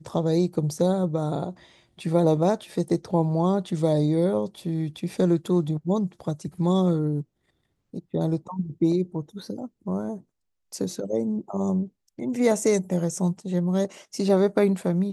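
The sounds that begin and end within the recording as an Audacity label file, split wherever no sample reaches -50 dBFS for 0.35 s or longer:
7.930000	10.220000	sound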